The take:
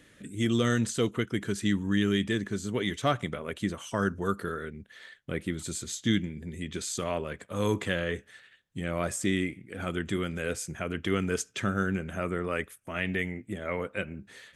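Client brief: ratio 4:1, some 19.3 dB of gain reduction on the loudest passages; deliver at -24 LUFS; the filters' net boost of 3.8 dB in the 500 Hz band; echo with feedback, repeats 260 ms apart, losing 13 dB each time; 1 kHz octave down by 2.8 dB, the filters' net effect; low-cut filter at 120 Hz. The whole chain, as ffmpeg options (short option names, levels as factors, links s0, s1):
-af "highpass=120,equalizer=f=500:t=o:g=6,equalizer=f=1000:t=o:g=-6,acompressor=threshold=0.00631:ratio=4,aecho=1:1:260|520|780:0.224|0.0493|0.0108,volume=11.9"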